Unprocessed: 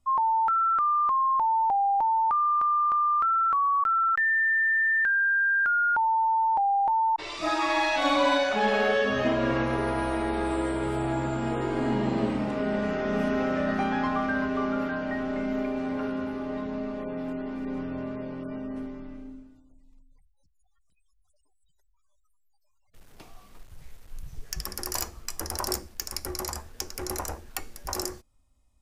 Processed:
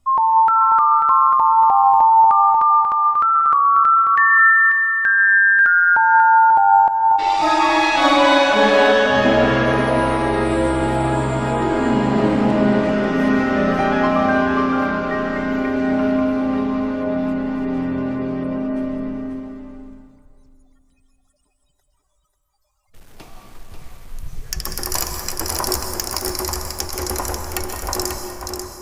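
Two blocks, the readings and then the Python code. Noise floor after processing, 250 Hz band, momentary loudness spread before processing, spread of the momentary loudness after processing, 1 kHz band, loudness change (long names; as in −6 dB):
−63 dBFS, +10.0 dB, 13 LU, 13 LU, +10.5 dB, +10.0 dB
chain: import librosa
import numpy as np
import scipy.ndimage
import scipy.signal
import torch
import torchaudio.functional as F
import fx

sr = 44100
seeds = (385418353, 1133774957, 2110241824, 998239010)

y = x + 10.0 ** (-6.0 / 20.0) * np.pad(x, (int(540 * sr / 1000.0), 0))[:len(x)]
y = fx.rev_plate(y, sr, seeds[0], rt60_s=2.1, hf_ratio=0.45, predelay_ms=115, drr_db=5.0)
y = y * librosa.db_to_amplitude(8.0)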